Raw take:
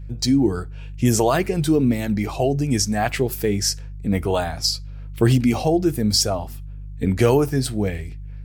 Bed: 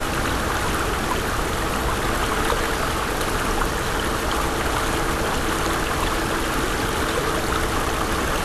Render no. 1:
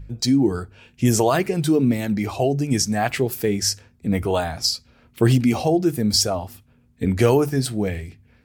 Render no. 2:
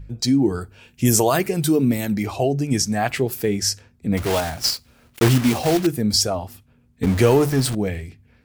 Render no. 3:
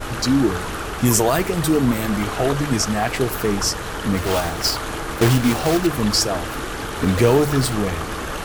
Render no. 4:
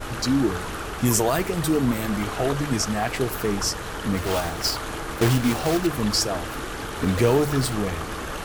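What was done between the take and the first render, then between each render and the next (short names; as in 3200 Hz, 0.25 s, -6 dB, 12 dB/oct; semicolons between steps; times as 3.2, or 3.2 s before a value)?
de-hum 50 Hz, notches 3
0.61–2.23 high shelf 8300 Hz +12 dB; 4.17–5.87 block floating point 3-bit; 7.03–7.75 zero-crossing step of -23.5 dBFS
add bed -5 dB
gain -4 dB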